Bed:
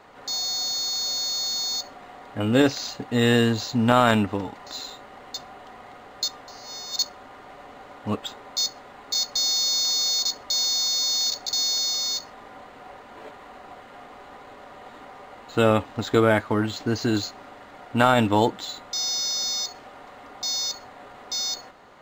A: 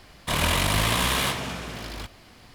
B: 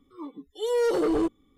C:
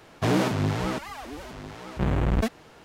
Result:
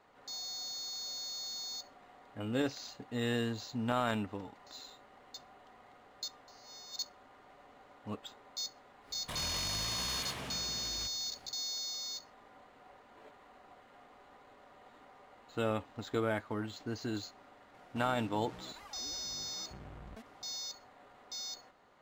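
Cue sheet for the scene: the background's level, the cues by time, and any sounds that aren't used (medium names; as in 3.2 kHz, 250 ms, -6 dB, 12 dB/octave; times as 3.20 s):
bed -14.5 dB
9.01 s: add A -11 dB, fades 0.10 s + peak limiter -20 dBFS
17.74 s: add C -14.5 dB + compression, threshold -32 dBFS
not used: B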